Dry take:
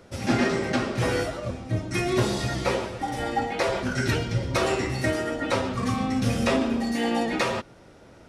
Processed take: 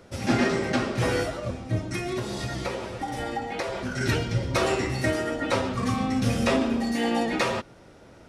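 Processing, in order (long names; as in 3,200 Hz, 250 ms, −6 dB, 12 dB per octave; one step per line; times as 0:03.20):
0:01.90–0:04.01: downward compressor, threshold −27 dBFS, peak gain reduction 9.5 dB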